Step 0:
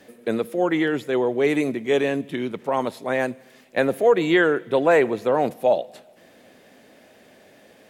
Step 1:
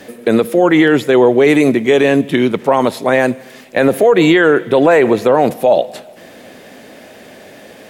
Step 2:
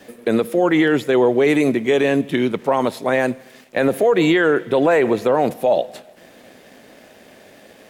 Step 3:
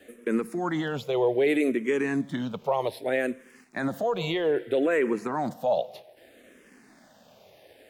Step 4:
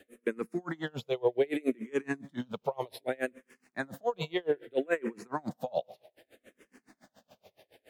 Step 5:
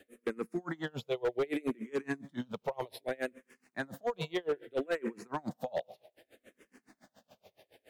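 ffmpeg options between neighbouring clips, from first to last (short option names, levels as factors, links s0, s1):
-af "alimiter=level_in=5.62:limit=0.891:release=50:level=0:latency=1,volume=0.891"
-af "aeval=exprs='sgn(val(0))*max(abs(val(0))-0.00447,0)':c=same,volume=0.531"
-filter_complex "[0:a]asplit=2[s0][s1];[s1]afreqshift=-0.63[s2];[s0][s2]amix=inputs=2:normalize=1,volume=0.473"
-af "aeval=exprs='val(0)*pow(10,-32*(0.5-0.5*cos(2*PI*7.1*n/s))/20)':c=same"
-af "asoftclip=type=hard:threshold=0.0596,volume=0.841"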